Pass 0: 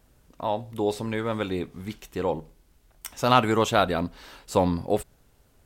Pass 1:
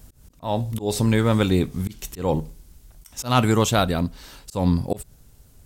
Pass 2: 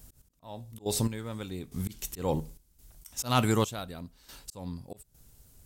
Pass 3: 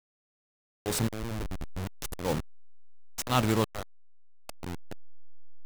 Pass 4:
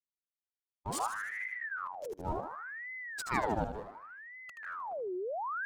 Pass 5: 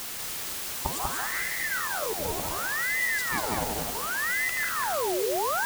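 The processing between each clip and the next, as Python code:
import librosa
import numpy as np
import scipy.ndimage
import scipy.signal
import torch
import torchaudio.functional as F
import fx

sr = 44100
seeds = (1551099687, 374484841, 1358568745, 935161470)

y1 = fx.bass_treble(x, sr, bass_db=10, treble_db=10)
y1 = fx.rider(y1, sr, range_db=10, speed_s=2.0)
y1 = fx.auto_swell(y1, sr, attack_ms=186.0)
y1 = F.gain(torch.from_numpy(y1), 1.5).numpy()
y2 = fx.high_shelf(y1, sr, hz=4700.0, db=7.0)
y2 = fx.step_gate(y2, sr, bpm=70, pattern='x...x...xxxx.xxx', floor_db=-12.0, edge_ms=4.5)
y2 = F.gain(torch.from_numpy(y2), -7.0).numpy()
y3 = fx.delta_hold(y2, sr, step_db=-27.0)
y4 = fx.spec_expand(y3, sr, power=1.8)
y4 = fx.echo_feedback(y4, sr, ms=77, feedback_pct=55, wet_db=-7.5)
y4 = fx.ring_lfo(y4, sr, carrier_hz=1200.0, swing_pct=70, hz=0.68)
y4 = F.gain(torch.from_numpy(y4), -3.5).numpy()
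y5 = fx.recorder_agc(y4, sr, target_db=-26.5, rise_db_per_s=43.0, max_gain_db=30)
y5 = fx.quant_dither(y5, sr, seeds[0], bits=6, dither='triangular')
y5 = y5 + 10.0 ** (-3.0 / 20.0) * np.pad(y5, (int(193 * sr / 1000.0), 0))[:len(y5)]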